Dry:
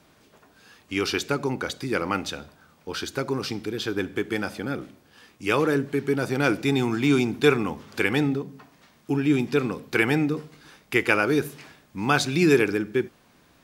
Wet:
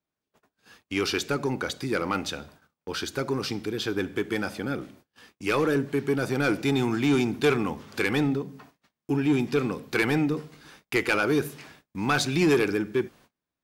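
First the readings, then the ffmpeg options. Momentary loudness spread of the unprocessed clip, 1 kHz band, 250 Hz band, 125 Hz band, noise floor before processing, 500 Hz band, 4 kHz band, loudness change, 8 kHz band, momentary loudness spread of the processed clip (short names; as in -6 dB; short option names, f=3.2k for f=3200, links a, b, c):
12 LU, -2.0 dB, -1.5 dB, -1.5 dB, -59 dBFS, -2.0 dB, -1.0 dB, -2.0 dB, -0.5 dB, 10 LU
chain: -af "asoftclip=type=tanh:threshold=-15dB,agate=range=-31dB:threshold=-52dB:ratio=16:detection=peak"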